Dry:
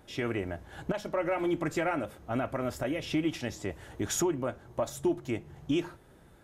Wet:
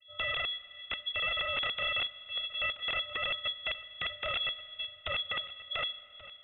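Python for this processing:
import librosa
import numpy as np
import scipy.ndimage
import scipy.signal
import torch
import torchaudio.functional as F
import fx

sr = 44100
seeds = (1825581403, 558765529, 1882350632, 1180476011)

p1 = fx.over_compress(x, sr, threshold_db=-31.0, ratio=-0.5)
p2 = x + F.gain(torch.from_numpy(p1), -2.5).numpy()
p3 = fx.vocoder(p2, sr, bands=32, carrier='square', carrier_hz=345.0)
p4 = (np.mod(10.0 ** (27.5 / 20.0) * p3 + 1.0, 2.0) - 1.0) / 10.0 ** (27.5 / 20.0)
p5 = p4 + 10.0 ** (-17.0 / 20.0) * np.pad(p4, (int(1131 * sr / 1000.0), 0))[:len(p4)]
p6 = fx.rev_fdn(p5, sr, rt60_s=3.4, lf_ratio=1.0, hf_ratio=1.0, size_ms=23.0, drr_db=17.0)
y = fx.freq_invert(p6, sr, carrier_hz=3700)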